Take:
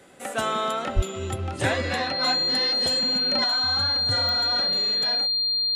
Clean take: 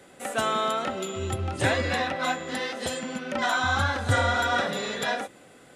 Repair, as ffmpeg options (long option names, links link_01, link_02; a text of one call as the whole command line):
ffmpeg -i in.wav -filter_complex "[0:a]adeclick=threshold=4,bandreject=frequency=4200:width=30,asplit=3[link_01][link_02][link_03];[link_01]afade=type=out:start_time=0.95:duration=0.02[link_04];[link_02]highpass=frequency=140:width=0.5412,highpass=frequency=140:width=1.3066,afade=type=in:start_time=0.95:duration=0.02,afade=type=out:start_time=1.07:duration=0.02[link_05];[link_03]afade=type=in:start_time=1.07:duration=0.02[link_06];[link_04][link_05][link_06]amix=inputs=3:normalize=0,asetnsamples=nb_out_samples=441:pad=0,asendcmd='3.44 volume volume 7dB',volume=0dB" out.wav